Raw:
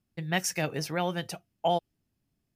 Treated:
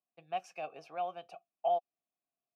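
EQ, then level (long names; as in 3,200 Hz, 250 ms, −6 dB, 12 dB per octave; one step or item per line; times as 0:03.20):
formant filter a
high-pass filter 130 Hz
0.0 dB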